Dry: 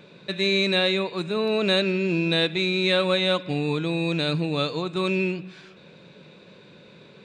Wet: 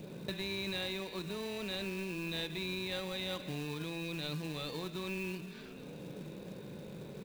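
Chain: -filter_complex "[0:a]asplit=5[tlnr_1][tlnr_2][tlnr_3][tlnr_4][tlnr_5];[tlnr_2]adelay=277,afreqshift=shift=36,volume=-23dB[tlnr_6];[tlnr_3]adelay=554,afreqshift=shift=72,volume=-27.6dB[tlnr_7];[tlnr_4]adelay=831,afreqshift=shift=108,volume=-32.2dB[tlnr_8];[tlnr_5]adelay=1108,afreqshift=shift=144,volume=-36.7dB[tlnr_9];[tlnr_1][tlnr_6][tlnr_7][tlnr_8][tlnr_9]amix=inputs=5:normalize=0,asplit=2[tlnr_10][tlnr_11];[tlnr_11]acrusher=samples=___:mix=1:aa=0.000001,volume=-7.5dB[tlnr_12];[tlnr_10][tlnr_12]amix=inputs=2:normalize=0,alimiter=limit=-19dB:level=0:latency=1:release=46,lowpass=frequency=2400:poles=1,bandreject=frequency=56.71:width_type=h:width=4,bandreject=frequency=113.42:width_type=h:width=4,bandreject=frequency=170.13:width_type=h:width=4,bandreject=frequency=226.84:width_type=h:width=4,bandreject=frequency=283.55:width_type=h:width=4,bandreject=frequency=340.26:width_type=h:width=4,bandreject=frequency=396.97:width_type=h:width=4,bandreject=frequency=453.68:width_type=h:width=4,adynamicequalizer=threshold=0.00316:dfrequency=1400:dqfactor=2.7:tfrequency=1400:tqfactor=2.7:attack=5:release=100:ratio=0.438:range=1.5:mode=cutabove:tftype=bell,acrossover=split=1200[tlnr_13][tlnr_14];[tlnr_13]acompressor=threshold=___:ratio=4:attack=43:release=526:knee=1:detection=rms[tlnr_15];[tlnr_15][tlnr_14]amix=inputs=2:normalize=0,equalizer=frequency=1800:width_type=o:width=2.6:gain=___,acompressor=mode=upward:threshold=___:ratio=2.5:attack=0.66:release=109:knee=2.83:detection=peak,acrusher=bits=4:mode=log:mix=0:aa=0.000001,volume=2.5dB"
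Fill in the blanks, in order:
33, -43dB, -8, -45dB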